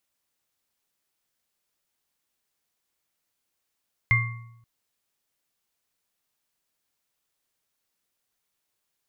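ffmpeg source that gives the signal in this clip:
ffmpeg -f lavfi -i "aevalsrc='0.112*pow(10,-3*t/0.87)*sin(2*PI*116*t)+0.0316*pow(10,-3*t/0.77)*sin(2*PI*1110*t)+0.168*pow(10,-3*t/0.48)*sin(2*PI*2100*t)':duration=0.53:sample_rate=44100" out.wav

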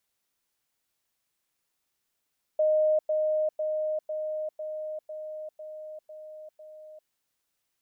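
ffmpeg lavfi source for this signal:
ffmpeg -f lavfi -i "aevalsrc='pow(10,(-20-3*floor(t/0.5))/20)*sin(2*PI*618*t)*clip(min(mod(t,0.5),0.4-mod(t,0.5))/0.005,0,1)':duration=4.5:sample_rate=44100" out.wav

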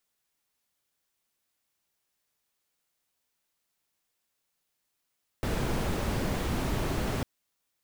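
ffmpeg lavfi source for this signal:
ffmpeg -f lavfi -i "anoisesrc=color=brown:amplitude=0.166:duration=1.8:sample_rate=44100:seed=1" out.wav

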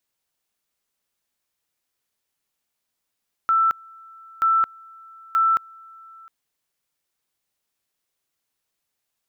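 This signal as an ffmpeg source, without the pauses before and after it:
ffmpeg -f lavfi -i "aevalsrc='pow(10,(-15-27*gte(mod(t,0.93),0.22))/20)*sin(2*PI*1330*t)':duration=2.79:sample_rate=44100" out.wav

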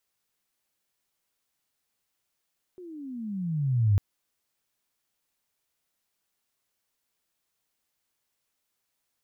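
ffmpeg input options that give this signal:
ffmpeg -f lavfi -i "aevalsrc='pow(10,(-17+24*(t/1.2-1))/20)*sin(2*PI*373*1.2/(-23.5*log(2)/12)*(exp(-23.5*log(2)/12*t/1.2)-1))':duration=1.2:sample_rate=44100" out.wav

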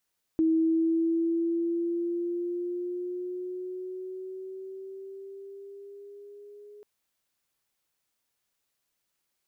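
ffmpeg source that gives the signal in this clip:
ffmpeg -f lavfi -i "aevalsrc='pow(10,(-20-26*t/6.44)/20)*sin(2*PI*321*6.44/(4.5*log(2)/12)*(exp(4.5*log(2)/12*t/6.44)-1))':duration=6.44:sample_rate=44100" out.wav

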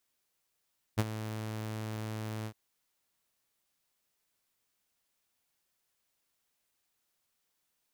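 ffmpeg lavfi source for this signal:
ffmpeg -f lavfi -i "aevalsrc='0.0944*(2*mod(109*t,1)-1)':duration=1.56:sample_rate=44100,afade=type=in:duration=0.024,afade=type=out:start_time=0.024:duration=0.037:silence=0.224,afade=type=out:start_time=1.49:duration=0.07" out.wav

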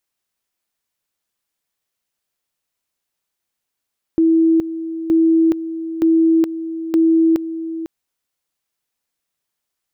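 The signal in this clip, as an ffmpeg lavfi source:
ffmpeg -f lavfi -i "aevalsrc='pow(10,(-10-12.5*gte(mod(t,0.92),0.42))/20)*sin(2*PI*326*t)':duration=3.68:sample_rate=44100" out.wav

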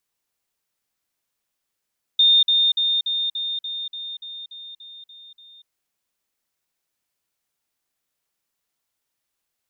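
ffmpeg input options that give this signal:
ffmpeg -f lavfi -i "aevalsrc='pow(10,(-11.5-3*floor(t/0.29))/20)*sin(2*PI*3640*t)*clip(min(mod(t,0.29),0.24-mod(t,0.29))/0.005,0,1)':duration=3.48:sample_rate=44100" out.wav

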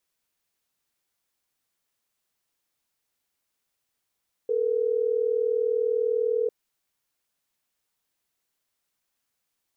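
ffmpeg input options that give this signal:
ffmpeg -f lavfi -i "aevalsrc='0.0596*(sin(2*PI*440*t)+sin(2*PI*480*t))*clip(min(mod(t,6),2-mod(t,6))/0.005,0,1)':duration=3.12:sample_rate=44100" out.wav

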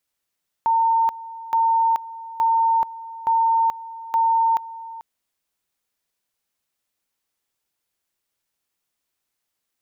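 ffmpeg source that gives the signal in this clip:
ffmpeg -f lavfi -i "aevalsrc='pow(10,(-15-17.5*gte(mod(t,0.87),0.43))/20)*sin(2*PI*909*t)':duration=4.35:sample_rate=44100" out.wav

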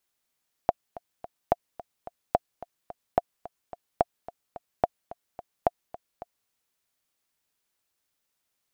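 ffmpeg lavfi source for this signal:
ffmpeg -f lavfi -i "aevalsrc='pow(10,(-6.5-18.5*gte(mod(t,3*60/217),60/217))/20)*sin(2*PI*700*mod(t,60/217))*exp(-6.91*mod(t,60/217)/0.03)':duration=5.8:sample_rate=44100" out.wav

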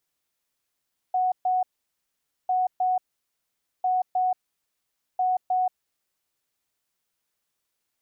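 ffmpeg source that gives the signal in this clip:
ffmpeg -f lavfi -i "aevalsrc='0.1*sin(2*PI*738*t)*clip(min(mod(mod(t,1.35),0.31),0.18-mod(mod(t,1.35),0.31))/0.005,0,1)*lt(mod(t,1.35),0.62)':duration=5.4:sample_rate=44100" out.wav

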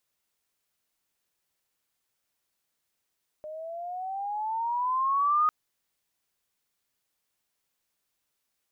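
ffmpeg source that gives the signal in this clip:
ffmpeg -f lavfi -i "aevalsrc='pow(10,(-19.5+17*(t/2.05-1))/20)*sin(2*PI*607*2.05/(12.5*log(2)/12)*(exp(12.5*log(2)/12*t/2.05)-1))':duration=2.05:sample_rate=44100" out.wav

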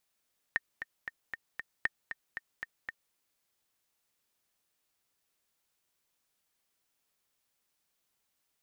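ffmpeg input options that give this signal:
ffmpeg -f lavfi -i "aevalsrc='pow(10,(-15-9.5*gte(mod(t,5*60/232),60/232))/20)*sin(2*PI*1830*mod(t,60/232))*exp(-6.91*mod(t,60/232)/0.03)':duration=2.58:sample_rate=44100" out.wav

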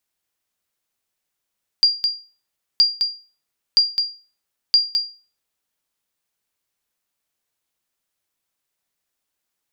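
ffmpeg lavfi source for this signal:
ffmpeg -f lavfi -i "aevalsrc='0.473*(sin(2*PI*4780*mod(t,0.97))*exp(-6.91*mod(t,0.97)/0.35)+0.501*sin(2*PI*4780*max(mod(t,0.97)-0.21,0))*exp(-6.91*max(mod(t,0.97)-0.21,0)/0.35))':duration=3.88:sample_rate=44100" out.wav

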